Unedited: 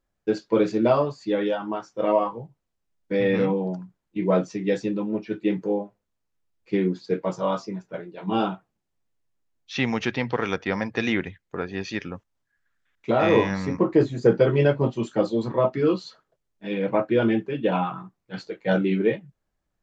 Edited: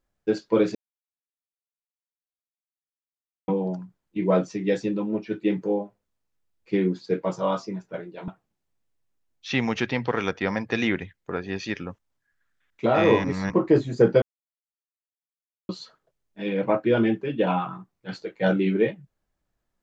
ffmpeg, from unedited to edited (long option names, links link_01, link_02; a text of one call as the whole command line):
ffmpeg -i in.wav -filter_complex "[0:a]asplit=8[link_01][link_02][link_03][link_04][link_05][link_06][link_07][link_08];[link_01]atrim=end=0.75,asetpts=PTS-STARTPTS,afade=type=out:start_time=0.746:duration=0.004:curve=hsin[link_09];[link_02]atrim=start=0.75:end=3.48,asetpts=PTS-STARTPTS,volume=0[link_10];[link_03]atrim=start=3.48:end=8.282,asetpts=PTS-STARTPTS,afade=type=in:duration=0.004:curve=hsin[link_11];[link_04]atrim=start=8.528:end=13.492[link_12];[link_05]atrim=start=13.488:end=13.752,asetpts=PTS-STARTPTS,areverse[link_13];[link_06]atrim=start=13.748:end=14.47,asetpts=PTS-STARTPTS,afade=type=out:start_time=0.718:duration=0.004:curve=hsin[link_14];[link_07]atrim=start=14.47:end=15.94,asetpts=PTS-STARTPTS,volume=0[link_15];[link_08]atrim=start=15.94,asetpts=PTS-STARTPTS,afade=type=in:duration=0.004:curve=hsin[link_16];[link_09][link_10][link_11]concat=n=3:v=0:a=1[link_17];[link_17][link_12]acrossfade=duration=0.004:curve1=hsin:curve2=hsin[link_18];[link_18][link_13]acrossfade=duration=0.004:curve1=hsin:curve2=hsin[link_19];[link_14][link_15][link_16]concat=n=3:v=0:a=1[link_20];[link_19][link_20]acrossfade=duration=0.004:curve1=hsin:curve2=hsin" out.wav